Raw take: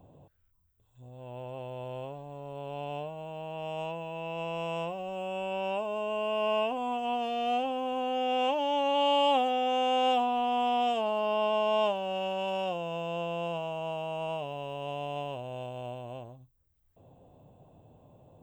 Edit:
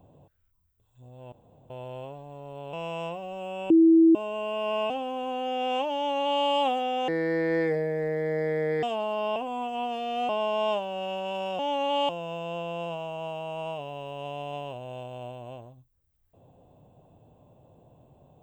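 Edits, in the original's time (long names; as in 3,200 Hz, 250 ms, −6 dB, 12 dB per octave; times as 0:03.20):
0:01.32–0:01.70: fill with room tone
0:02.73–0:04.49: remove
0:05.46–0:05.91: beep over 327 Hz −13.5 dBFS
0:06.66–0:07.59: move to 0:11.42
0:08.64–0:09.14: duplicate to 0:12.72
0:09.77–0:10.89: play speed 64%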